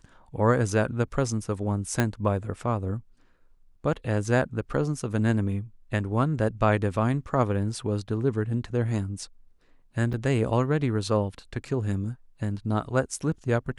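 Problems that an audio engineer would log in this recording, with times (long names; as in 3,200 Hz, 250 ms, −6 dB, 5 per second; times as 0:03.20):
0:02.00: click −9 dBFS
0:10.13–0:10.14: drop-out 6.3 ms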